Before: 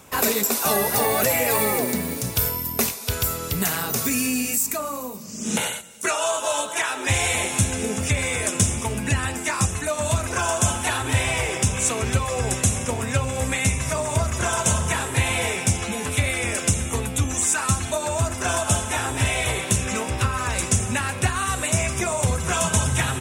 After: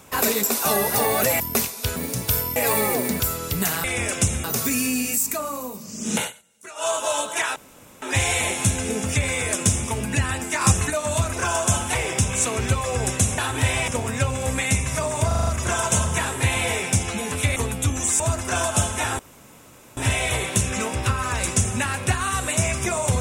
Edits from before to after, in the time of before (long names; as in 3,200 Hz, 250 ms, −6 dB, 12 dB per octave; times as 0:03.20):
0:01.40–0:02.04: swap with 0:02.64–0:03.20
0:05.61–0:06.27: duck −17 dB, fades 0.12 s
0:06.96: splice in room tone 0.46 s
0:09.55–0:09.84: clip gain +4.5 dB
0:10.89–0:11.39: move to 0:12.82
0:14.21: stutter 0.04 s, 6 plays
0:16.30–0:16.90: move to 0:03.84
0:17.54–0:18.13: remove
0:19.12: splice in room tone 0.78 s